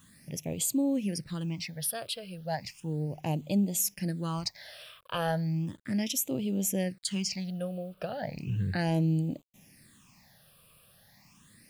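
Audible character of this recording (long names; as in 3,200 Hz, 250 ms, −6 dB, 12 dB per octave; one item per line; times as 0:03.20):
a quantiser's noise floor 10 bits, dither none
phaser sweep stages 8, 0.35 Hz, lowest notch 250–1,700 Hz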